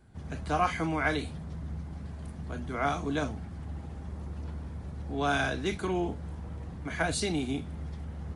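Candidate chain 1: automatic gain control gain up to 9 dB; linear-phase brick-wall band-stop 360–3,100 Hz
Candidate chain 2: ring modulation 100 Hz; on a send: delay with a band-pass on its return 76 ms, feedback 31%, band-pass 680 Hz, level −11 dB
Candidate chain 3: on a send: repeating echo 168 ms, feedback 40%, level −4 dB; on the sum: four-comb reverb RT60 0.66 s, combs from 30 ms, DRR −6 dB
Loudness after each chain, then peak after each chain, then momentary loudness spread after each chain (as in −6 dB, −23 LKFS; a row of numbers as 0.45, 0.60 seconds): −28.0, −36.5, −25.0 LKFS; −9.5, −14.5, −7.5 dBFS; 8, 13, 16 LU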